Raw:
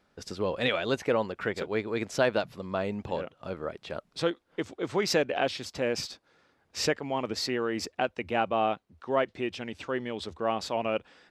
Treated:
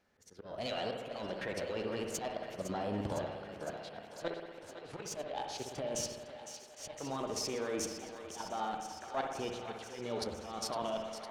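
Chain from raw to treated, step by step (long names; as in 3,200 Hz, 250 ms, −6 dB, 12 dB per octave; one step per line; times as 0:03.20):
one-sided soft clipper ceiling −17.5 dBFS
output level in coarse steps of 13 dB
volume swells 236 ms
dynamic equaliser 1,700 Hz, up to −4 dB, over −55 dBFS, Q 1.1
formants moved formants +3 semitones
feedback echo with a high-pass in the loop 508 ms, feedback 78%, high-pass 440 Hz, level −10.5 dB
on a send at −3 dB: convolution reverb RT60 1.3 s, pre-delay 59 ms
on the sum: level +2 dB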